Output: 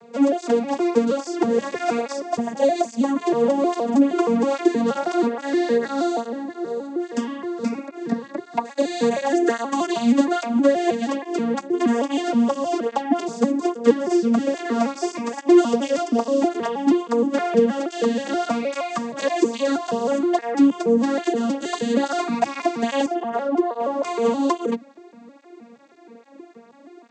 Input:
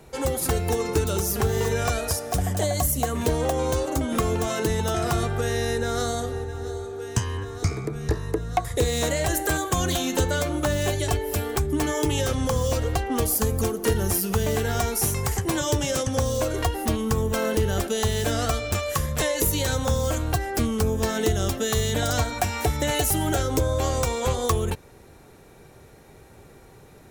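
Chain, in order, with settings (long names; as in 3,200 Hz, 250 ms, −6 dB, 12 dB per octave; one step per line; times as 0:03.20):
vocoder with an arpeggio as carrier minor triad, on A#3, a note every 158 ms
0:23.06–0:24.05: resonant band-pass 770 Hz, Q 0.7
through-zero flanger with one copy inverted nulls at 1.2 Hz, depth 4.1 ms
level +9 dB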